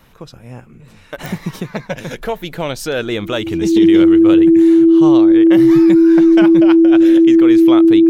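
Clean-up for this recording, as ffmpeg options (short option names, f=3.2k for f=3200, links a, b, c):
-af "adeclick=t=4,bandreject=f=330:w=30"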